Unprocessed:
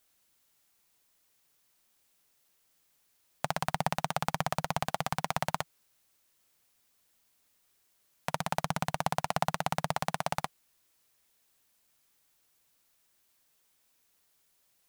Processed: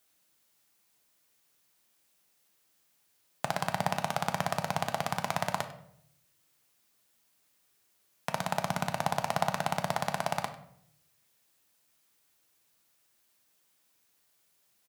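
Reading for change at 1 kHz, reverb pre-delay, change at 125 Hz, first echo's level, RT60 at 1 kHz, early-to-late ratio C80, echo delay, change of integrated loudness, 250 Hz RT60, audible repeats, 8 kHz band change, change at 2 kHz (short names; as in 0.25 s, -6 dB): +0.5 dB, 3 ms, -0.5 dB, -18.0 dB, 0.65 s, 13.0 dB, 98 ms, +1.0 dB, 0.85 s, 1, +0.5 dB, +1.5 dB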